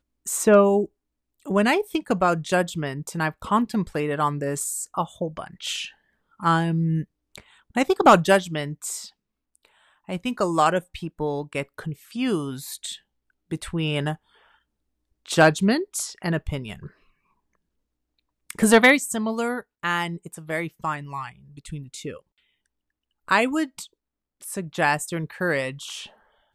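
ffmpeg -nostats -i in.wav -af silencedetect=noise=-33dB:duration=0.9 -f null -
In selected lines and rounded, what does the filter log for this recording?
silence_start: 9.06
silence_end: 10.09 | silence_duration: 1.03
silence_start: 14.15
silence_end: 15.26 | silence_duration: 1.11
silence_start: 16.87
silence_end: 18.50 | silence_duration: 1.63
silence_start: 22.16
silence_end: 23.28 | silence_duration: 1.12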